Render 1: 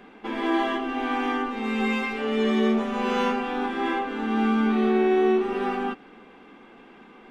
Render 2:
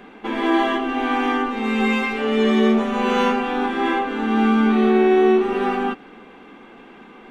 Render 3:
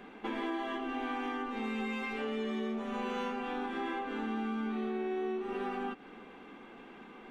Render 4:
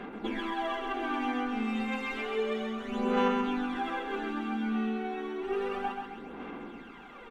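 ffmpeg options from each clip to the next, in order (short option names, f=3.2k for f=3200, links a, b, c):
-af "bandreject=f=5k:w=11,volume=5.5dB"
-af "acompressor=threshold=-26dB:ratio=6,volume=-7.5dB"
-af "aphaser=in_gain=1:out_gain=1:delay=4.2:decay=0.67:speed=0.31:type=sinusoidal,aeval=exprs='val(0)+0.00141*sin(2*PI*1400*n/s)':c=same,aecho=1:1:132|264|396|528|660|792:0.562|0.253|0.114|0.0512|0.0231|0.0104"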